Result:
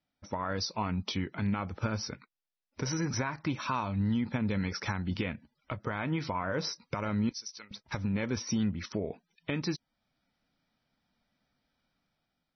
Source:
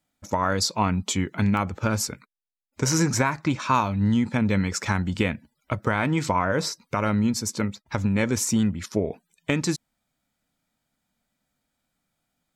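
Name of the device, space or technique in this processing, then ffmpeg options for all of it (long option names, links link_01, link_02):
low-bitrate web radio: -filter_complex "[0:a]asettb=1/sr,asplit=3[link_01][link_02][link_03];[link_01]atrim=end=7.294[link_04];[link_02]atrim=start=7.29:end=7.71,asetpts=PTS-STARTPTS,afade=type=in:duration=0.004:curve=qsin,afade=type=out:start_time=0.416:duration=0.004:curve=qsin,aderivative[link_05];[link_03]atrim=start=7.706[link_06];[link_04][link_05]acrossfade=duration=0.004:curve1=hsin:curve2=qsin[link_07];[link_07][link_06]acrossfade=duration=0.004:curve1=qsin:curve2=hsin,dynaudnorm=framelen=190:gausssize=7:maxgain=6.5dB,alimiter=limit=-15dB:level=0:latency=1:release=411,volume=-6dB" -ar 24000 -c:a libmp3lame -b:a 24k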